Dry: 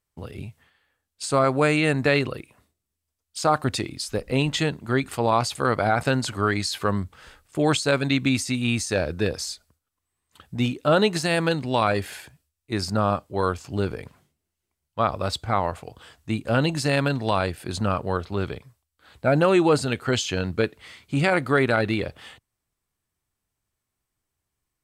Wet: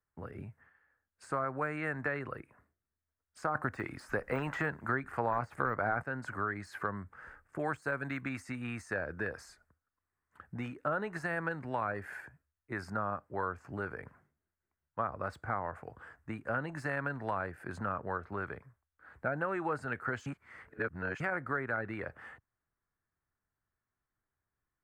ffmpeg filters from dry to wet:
-filter_complex "[0:a]asettb=1/sr,asplit=3[a][b][c];[a]atrim=end=7.594[d];[b]atrim=start=7.59:end=8.21,asetpts=PTS-STARTPTS,afade=t=in:d=0.004:c=qsin,afade=t=out:st=0.616:d=0.004:c=qsin,highshelf=f=8.4k:g=12[e];[c]atrim=start=8.206[f];[d][e]acrossfade=d=0.004:c1=hsin:c2=qsin[g];[g][f]acrossfade=d=0.004:c1=qsin:c2=hsin,asplit=5[h][i][j][k][l];[h]atrim=end=3.552[m];[i]atrim=start=3.548:end=6.022,asetpts=PTS-STARTPTS,volume=11dB[n];[j]atrim=start=6.018:end=20.262[o];[k]atrim=start=20.258:end=21.202,asetpts=PTS-STARTPTS,areverse[p];[l]atrim=start=21.198[q];[m][n]acrossfade=d=0.004:c1=hsin:c2=hsin[r];[r][o]acrossfade=d=0.004:c1=hsin:c2=hsin[s];[s][p]acrossfade=d=0.004:c1=hsin:c2=hsin[t];[t][q]acrossfade=d=0.004:c1=hsin:c2=hsin,deesser=0.55,highshelf=f=2.4k:t=q:w=3:g=-13.5,acrossover=split=99|640[u][v][w];[u]acompressor=threshold=-48dB:ratio=4[x];[v]acompressor=threshold=-33dB:ratio=4[y];[w]acompressor=threshold=-27dB:ratio=4[z];[x][y][z]amix=inputs=3:normalize=0,volume=-7dB"

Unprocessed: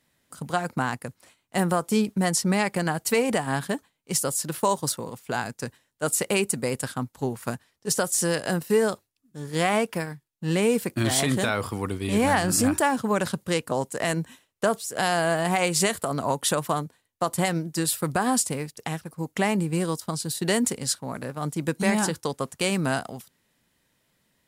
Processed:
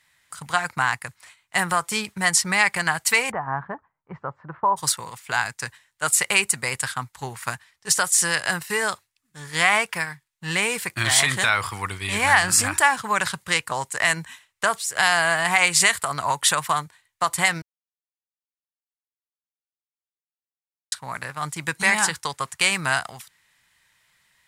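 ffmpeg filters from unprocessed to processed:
-filter_complex "[0:a]asplit=3[a][b][c];[a]afade=t=out:st=3.3:d=0.02[d];[b]lowpass=f=1.2k:w=0.5412,lowpass=f=1.2k:w=1.3066,afade=t=in:st=3.3:d=0.02,afade=t=out:st=4.76:d=0.02[e];[c]afade=t=in:st=4.76:d=0.02[f];[d][e][f]amix=inputs=3:normalize=0,asplit=3[g][h][i];[g]atrim=end=17.62,asetpts=PTS-STARTPTS,afade=t=out:st=17.616:d=0.004:c=hsin[j];[h]atrim=start=17.62:end=20.92,asetpts=PTS-STARTPTS,volume=0[k];[i]atrim=start=20.92,asetpts=PTS-STARTPTS,afade=t=in:d=0.004:c=hsin[l];[j][k][l]concat=n=3:v=0:a=1,equalizer=f=250:t=o:w=1:g=-12,equalizer=f=500:t=o:w=1:g=-7,equalizer=f=1k:t=o:w=1:g=6,equalizer=f=2k:t=o:w=1:g=10,equalizer=f=4k:t=o:w=1:g=4,equalizer=f=8k:t=o:w=1:g=6"

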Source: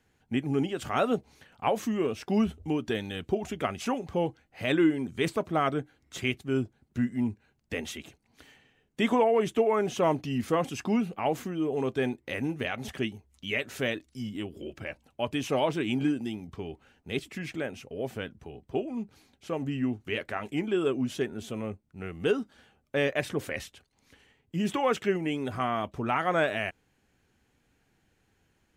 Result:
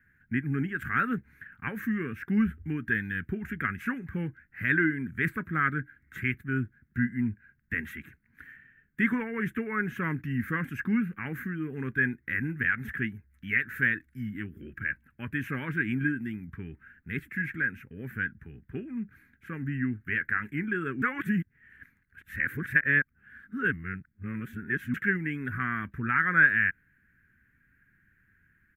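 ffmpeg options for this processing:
-filter_complex "[0:a]asplit=3[a][b][c];[a]atrim=end=21.022[d];[b]atrim=start=21.018:end=24.942,asetpts=PTS-STARTPTS,areverse[e];[c]atrim=start=24.938[f];[d][e]acrossfade=d=0.004:c1=hsin:c2=hsin[g];[g][f]acrossfade=d=0.004:c1=hsin:c2=hsin,firequalizer=gain_entry='entry(190,0);entry(660,-29);entry(1600,13);entry(3000,-17);entry(4800,-26);entry(9000,-16);entry(13000,-1)':delay=0.05:min_phase=1,volume=2.5dB"

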